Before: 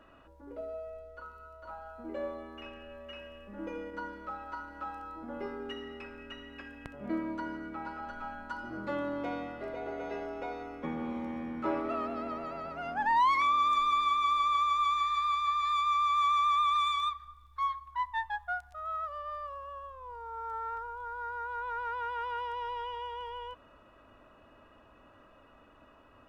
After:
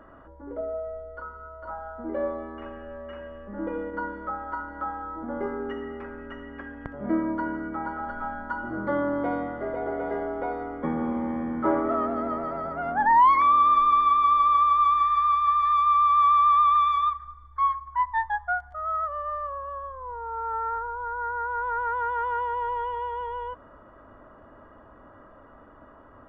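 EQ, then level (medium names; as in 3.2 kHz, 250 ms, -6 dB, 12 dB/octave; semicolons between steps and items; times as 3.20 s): Savitzky-Golay filter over 41 samples; +8.5 dB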